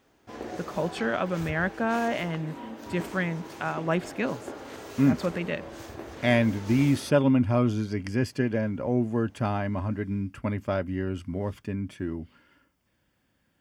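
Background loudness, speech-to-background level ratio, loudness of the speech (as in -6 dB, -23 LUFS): -41.0 LUFS, 13.0 dB, -28.0 LUFS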